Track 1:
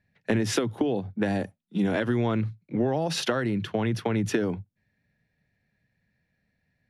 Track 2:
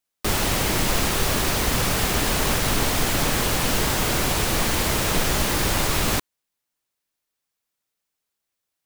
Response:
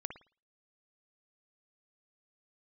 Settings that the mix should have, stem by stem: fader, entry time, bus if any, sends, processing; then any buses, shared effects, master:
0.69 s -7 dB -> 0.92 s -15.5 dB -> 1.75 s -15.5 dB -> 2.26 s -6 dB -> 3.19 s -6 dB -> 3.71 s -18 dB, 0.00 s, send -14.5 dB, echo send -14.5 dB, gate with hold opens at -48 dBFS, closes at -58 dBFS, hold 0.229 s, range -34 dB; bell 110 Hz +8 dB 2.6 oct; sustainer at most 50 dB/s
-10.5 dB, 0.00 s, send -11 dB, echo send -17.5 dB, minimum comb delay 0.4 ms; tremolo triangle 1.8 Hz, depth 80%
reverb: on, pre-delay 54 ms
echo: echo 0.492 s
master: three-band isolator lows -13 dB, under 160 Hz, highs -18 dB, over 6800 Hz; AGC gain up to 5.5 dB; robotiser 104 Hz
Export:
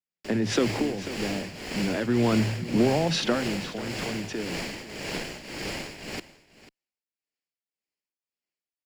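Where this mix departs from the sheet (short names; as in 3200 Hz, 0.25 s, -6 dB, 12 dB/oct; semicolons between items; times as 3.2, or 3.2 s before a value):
stem 2: send off; master: missing robotiser 104 Hz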